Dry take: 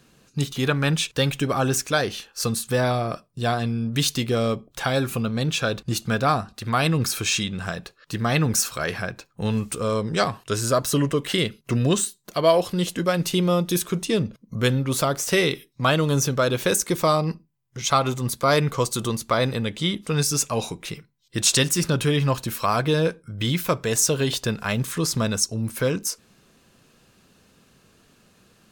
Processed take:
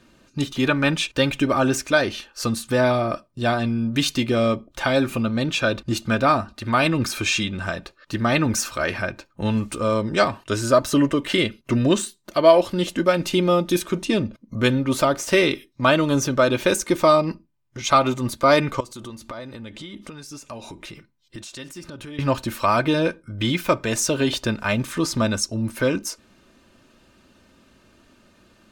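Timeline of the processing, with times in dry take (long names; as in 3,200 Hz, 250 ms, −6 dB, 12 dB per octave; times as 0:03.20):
0:18.80–0:22.19: downward compressor 10 to 1, threshold −34 dBFS
whole clip: low-pass filter 3,400 Hz 6 dB per octave; comb filter 3.3 ms, depth 54%; dynamic equaliser 2,400 Hz, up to +4 dB, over −45 dBFS, Q 7.2; level +2.5 dB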